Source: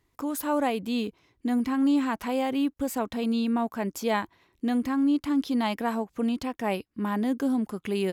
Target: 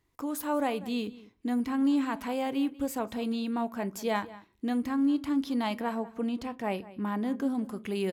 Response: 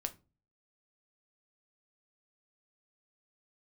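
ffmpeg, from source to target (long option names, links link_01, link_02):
-filter_complex "[0:a]asettb=1/sr,asplit=3[link_01][link_02][link_03];[link_01]atrim=end=5.804[link_04];[link_02]atrim=start=5.8:end=7.55,asetpts=PTS-STARTPTS,afade=type=in:duration=0.004:curve=qsin,afade=type=out:start_time=1.746:duration=0.004:curve=qsin,highshelf=frequency=4300:gain=-5.5[link_05];[link_03]atrim=start=7.546[link_06];[link_04][link_05]acrossfade=duration=0.004:curve1=hsin:curve2=qsin[link_07];[link_07][link_06]acrossfade=duration=0.004:curve1=qsin:curve2=hsin,asplit=2[link_08][link_09];[link_09]adelay=192.4,volume=-18dB,highshelf=frequency=4000:gain=-4.33[link_10];[link_08][link_10]amix=inputs=2:normalize=0,asplit=2[link_11][link_12];[1:a]atrim=start_sample=2205[link_13];[link_12][link_13]afir=irnorm=-1:irlink=0,volume=-1dB[link_14];[link_11][link_14]amix=inputs=2:normalize=0,volume=-8.5dB"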